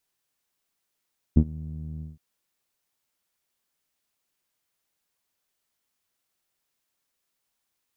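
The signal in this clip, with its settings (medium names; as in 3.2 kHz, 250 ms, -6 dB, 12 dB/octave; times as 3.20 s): synth note saw D#2 12 dB/octave, low-pass 180 Hz, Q 2.6, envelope 0.5 oct, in 0.18 s, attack 9.3 ms, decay 0.07 s, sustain -23 dB, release 0.17 s, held 0.65 s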